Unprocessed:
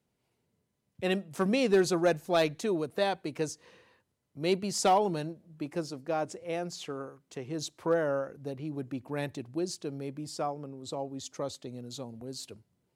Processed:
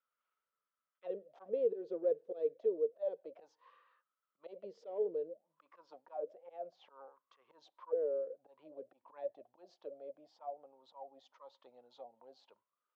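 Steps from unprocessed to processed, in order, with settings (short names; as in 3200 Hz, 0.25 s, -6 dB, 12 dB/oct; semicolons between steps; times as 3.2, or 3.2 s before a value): auto swell 0.166 s; soft clip -20 dBFS, distortion -19 dB; auto-wah 450–1300 Hz, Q 14, down, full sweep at -30.5 dBFS; speaker cabinet 110–5400 Hz, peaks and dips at 140 Hz -8 dB, 540 Hz +9 dB, 810 Hz -5 dB, 3300 Hz +7 dB; mismatched tape noise reduction encoder only; gain +3 dB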